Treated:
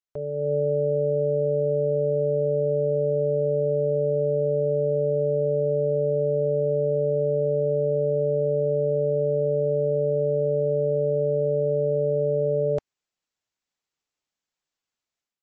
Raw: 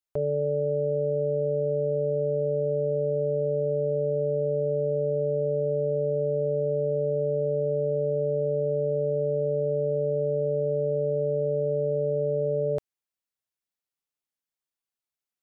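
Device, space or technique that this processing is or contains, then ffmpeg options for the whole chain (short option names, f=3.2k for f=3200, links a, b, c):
low-bitrate web radio: -af "dynaudnorm=f=330:g=3:m=11.5dB,alimiter=limit=-11dB:level=0:latency=1:release=165,volume=-5dB" -ar 32000 -c:a libmp3lame -b:a 32k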